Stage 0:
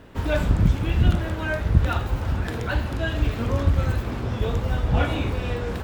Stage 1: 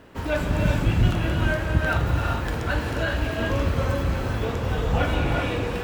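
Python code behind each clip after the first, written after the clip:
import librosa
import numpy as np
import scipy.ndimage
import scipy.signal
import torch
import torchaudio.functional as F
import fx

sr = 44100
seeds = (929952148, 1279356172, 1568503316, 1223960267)

y = fx.low_shelf(x, sr, hz=150.0, db=-7.5)
y = fx.notch(y, sr, hz=3600.0, q=17.0)
y = fx.rev_gated(y, sr, seeds[0], gate_ms=430, shape='rising', drr_db=0.0)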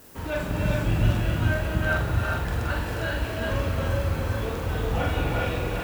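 y = fx.dmg_noise_colour(x, sr, seeds[1], colour='blue', level_db=-48.0)
y = fx.doubler(y, sr, ms=45.0, db=-4.5)
y = y + 10.0 ** (-5.0 / 20.0) * np.pad(y, (int(404 * sr / 1000.0), 0))[:len(y)]
y = y * 10.0 ** (-5.0 / 20.0)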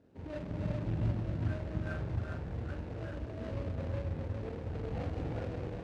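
y = scipy.ndimage.median_filter(x, 41, mode='constant')
y = scipy.signal.sosfilt(scipy.signal.butter(2, 71.0, 'highpass', fs=sr, output='sos'), y)
y = fx.air_absorb(y, sr, metres=89.0)
y = y * 10.0 ** (-8.5 / 20.0)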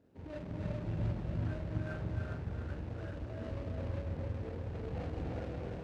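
y = x + 10.0 ** (-5.5 / 20.0) * np.pad(x, (int(296 * sr / 1000.0), 0))[:len(x)]
y = y * 10.0 ** (-3.0 / 20.0)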